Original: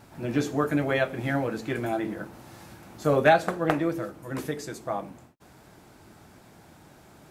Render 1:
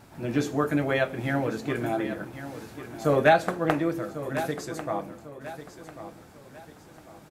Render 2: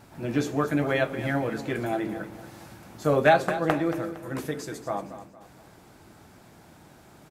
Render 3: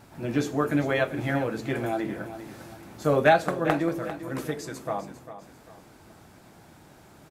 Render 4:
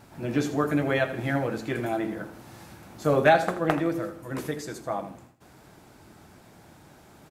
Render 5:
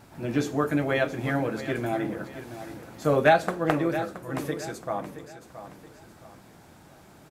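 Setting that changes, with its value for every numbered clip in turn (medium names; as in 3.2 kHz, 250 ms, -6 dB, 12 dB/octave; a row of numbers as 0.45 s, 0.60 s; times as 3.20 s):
feedback delay, time: 1095 ms, 230 ms, 398 ms, 81 ms, 673 ms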